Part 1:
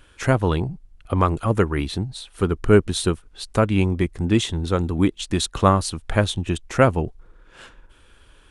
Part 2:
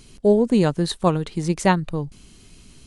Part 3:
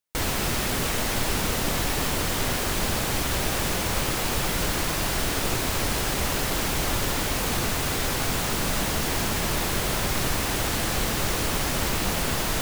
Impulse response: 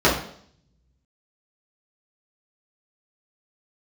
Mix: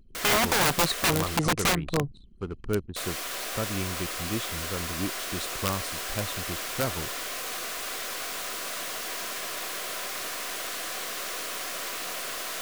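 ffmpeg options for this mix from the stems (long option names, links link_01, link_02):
-filter_complex "[0:a]volume=-13.5dB[link_01];[1:a]equalizer=frequency=870:width=0.44:gain=7,volume=-2dB[link_02];[2:a]highpass=550,aeval=exprs='(tanh(11.2*val(0)+0.45)-tanh(0.45))/11.2':channel_layout=same,volume=-3.5dB,asplit=3[link_03][link_04][link_05];[link_03]atrim=end=1.37,asetpts=PTS-STARTPTS,afade=type=out:start_time=1.366:duration=0.004:curve=hsin[link_06];[link_04]atrim=start=1.37:end=2.96,asetpts=PTS-STARTPTS,volume=0[link_07];[link_05]atrim=start=2.96,asetpts=PTS-STARTPTS,afade=type=in:duration=0.004:curve=hsin[link_08];[link_06][link_07][link_08]concat=n=3:v=0:a=1[link_09];[link_02][link_09]amix=inputs=2:normalize=0,asuperstop=centerf=870:order=12:qfactor=5.8,alimiter=limit=-10dB:level=0:latency=1:release=369,volume=0dB[link_10];[link_01][link_10]amix=inputs=2:normalize=0,aeval=exprs='(mod(7.08*val(0)+1,2)-1)/7.08':channel_layout=same,anlmdn=0.251"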